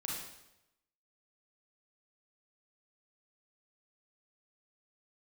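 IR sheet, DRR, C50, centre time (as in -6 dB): -3.5 dB, 0.0 dB, 64 ms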